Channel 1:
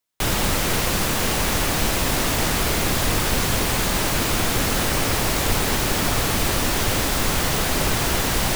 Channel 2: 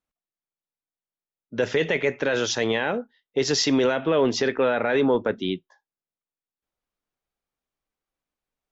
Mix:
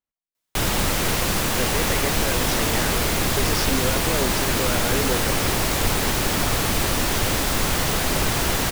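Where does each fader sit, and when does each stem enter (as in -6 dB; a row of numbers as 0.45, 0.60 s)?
-0.5, -6.5 dB; 0.35, 0.00 s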